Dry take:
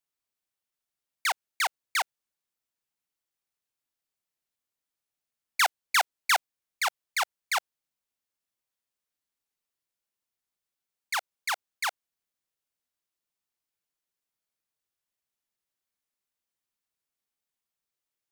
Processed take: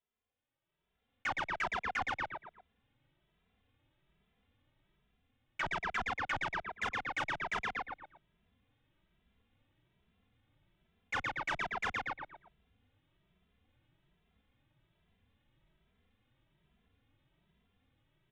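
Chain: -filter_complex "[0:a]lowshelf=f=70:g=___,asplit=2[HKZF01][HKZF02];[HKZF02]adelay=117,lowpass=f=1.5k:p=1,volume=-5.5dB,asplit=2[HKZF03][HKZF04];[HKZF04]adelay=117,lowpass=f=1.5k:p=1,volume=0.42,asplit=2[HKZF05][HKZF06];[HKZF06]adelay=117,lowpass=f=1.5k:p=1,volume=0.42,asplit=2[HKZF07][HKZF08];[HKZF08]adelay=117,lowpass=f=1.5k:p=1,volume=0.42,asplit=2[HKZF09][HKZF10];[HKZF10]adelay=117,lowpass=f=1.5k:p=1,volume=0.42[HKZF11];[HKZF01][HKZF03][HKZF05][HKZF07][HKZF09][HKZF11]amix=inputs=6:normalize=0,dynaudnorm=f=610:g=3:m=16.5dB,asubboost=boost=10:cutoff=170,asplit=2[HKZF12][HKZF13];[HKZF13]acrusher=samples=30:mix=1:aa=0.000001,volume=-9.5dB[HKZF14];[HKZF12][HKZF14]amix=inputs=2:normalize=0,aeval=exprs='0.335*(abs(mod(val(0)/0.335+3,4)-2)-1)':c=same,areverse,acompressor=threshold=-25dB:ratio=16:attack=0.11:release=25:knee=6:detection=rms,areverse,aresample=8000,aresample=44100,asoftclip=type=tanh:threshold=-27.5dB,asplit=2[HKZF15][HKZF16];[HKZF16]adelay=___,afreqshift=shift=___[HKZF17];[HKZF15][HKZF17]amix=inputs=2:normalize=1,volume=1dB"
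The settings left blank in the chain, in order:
-4, 2.6, 1.2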